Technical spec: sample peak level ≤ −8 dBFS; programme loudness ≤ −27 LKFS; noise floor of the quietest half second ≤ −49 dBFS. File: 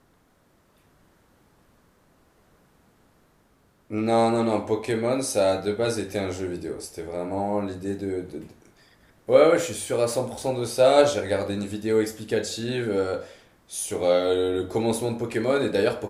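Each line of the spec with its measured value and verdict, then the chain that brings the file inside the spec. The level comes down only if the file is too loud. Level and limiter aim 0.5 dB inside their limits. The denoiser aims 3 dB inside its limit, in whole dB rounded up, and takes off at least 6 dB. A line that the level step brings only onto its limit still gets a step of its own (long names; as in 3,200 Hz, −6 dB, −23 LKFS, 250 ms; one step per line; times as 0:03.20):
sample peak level −4.5 dBFS: out of spec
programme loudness −24.5 LKFS: out of spec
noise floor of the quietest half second −62 dBFS: in spec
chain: level −3 dB
brickwall limiter −8.5 dBFS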